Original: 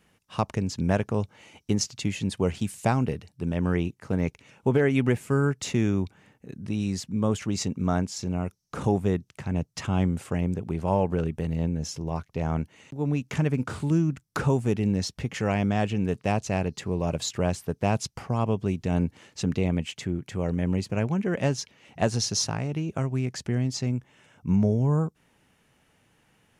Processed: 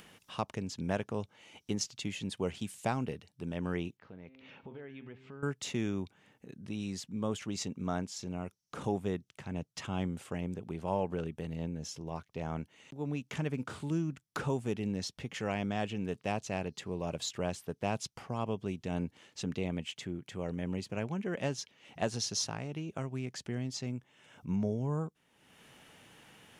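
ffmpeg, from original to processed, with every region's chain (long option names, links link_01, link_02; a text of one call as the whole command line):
ffmpeg -i in.wav -filter_complex "[0:a]asettb=1/sr,asplit=3[link_01][link_02][link_03];[link_01]atrim=end=3.974[link_04];[link_02]atrim=start=3.97:end=5.43,asetpts=PTS-STARTPTS,afade=type=in:duration=0.004:curve=qsin,afade=type=out:start_time=1.456:duration=0.004:curve=qsin,bandreject=frequency=131.4:width_type=h:width=4,bandreject=frequency=262.8:width_type=h:width=4,bandreject=frequency=394.2:width_type=h:width=4,bandreject=frequency=525.6:width_type=h:width=4,bandreject=frequency=657:width_type=h:width=4,bandreject=frequency=788.4:width_type=h:width=4,bandreject=frequency=919.8:width_type=h:width=4,bandreject=frequency=1051.2:width_type=h:width=4,bandreject=frequency=1182.6:width_type=h:width=4,bandreject=frequency=1314:width_type=h:width=4,bandreject=frequency=1445.4:width_type=h:width=4,bandreject=frequency=1576.8:width_type=h:width=4,bandreject=frequency=1708.2:width_type=h:width=4,bandreject=frequency=1839.6:width_type=h:width=4,bandreject=frequency=1971:width_type=h:width=4,bandreject=frequency=2102.4:width_type=h:width=4,bandreject=frequency=2233.8:width_type=h:width=4,bandreject=frequency=2365.2:width_type=h:width=4,bandreject=frequency=2496.6:width_type=h:width=4,bandreject=frequency=2628:width_type=h:width=4,bandreject=frequency=2759.4:width_type=h:width=4,bandreject=frequency=2890.8:width_type=h:width=4,bandreject=frequency=3022.2:width_type=h:width=4,bandreject=frequency=3153.6:width_type=h:width=4,bandreject=frequency=3285:width_type=h:width=4,bandreject=frequency=3416.4:width_type=h:width=4,bandreject=frequency=3547.8:width_type=h:width=4,bandreject=frequency=3679.2:width_type=h:width=4,bandreject=frequency=3810.6:width_type=h:width=4,bandreject=frequency=3942:width_type=h:width=4,bandreject=frequency=4073.4:width_type=h:width=4,bandreject=frequency=4204.8:width_type=h:width=4,bandreject=frequency=4336.2:width_type=h:width=4,bandreject=frequency=4467.6:width_type=h:width=4,bandreject=frequency=4599:width_type=h:width=4,acompressor=threshold=-49dB:ratio=2:attack=3.2:release=140:knee=1:detection=peak,lowpass=frequency=4100:width=0.5412,lowpass=frequency=4100:width=1.3066[link_05];[link_03]atrim=start=5.426[link_06];[link_04][link_05]acrossfade=duration=0.004:curve1=hsin:curve2=qsin[link_07];[link_07][link_06]acrossfade=duration=0.004:curve1=qsin:curve2=hsin,lowshelf=frequency=100:gain=-11.5,acompressor=mode=upward:threshold=-37dB:ratio=2.5,equalizer=frequency=3300:width_type=o:width=0.5:gain=4.5,volume=-7.5dB" out.wav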